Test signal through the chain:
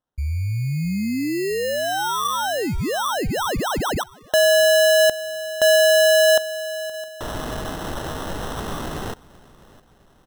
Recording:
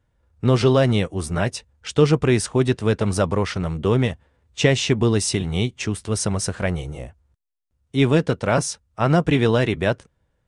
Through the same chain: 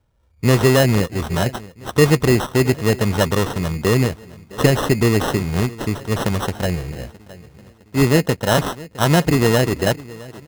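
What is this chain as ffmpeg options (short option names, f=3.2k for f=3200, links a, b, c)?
-filter_complex "[0:a]asplit=2[a][b];[b]adelay=662,lowpass=f=3.6k:p=1,volume=-20dB,asplit=2[c][d];[d]adelay=662,lowpass=f=3.6k:p=1,volume=0.51,asplit=2[e][f];[f]adelay=662,lowpass=f=3.6k:p=1,volume=0.51,asplit=2[g][h];[h]adelay=662,lowpass=f=3.6k:p=1,volume=0.51[i];[a][c][e][g][i]amix=inputs=5:normalize=0,acrusher=samples=19:mix=1:aa=0.000001,volume=2.5dB"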